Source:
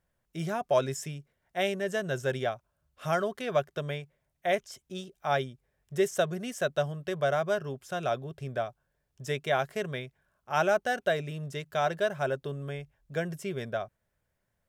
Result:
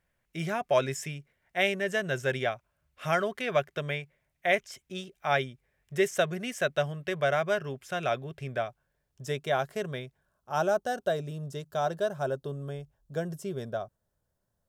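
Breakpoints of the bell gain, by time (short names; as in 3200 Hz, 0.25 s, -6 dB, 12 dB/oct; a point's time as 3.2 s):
bell 2200 Hz 0.89 oct
8.48 s +8 dB
9.28 s -3.5 dB
10.03 s -3.5 dB
10.6 s -12.5 dB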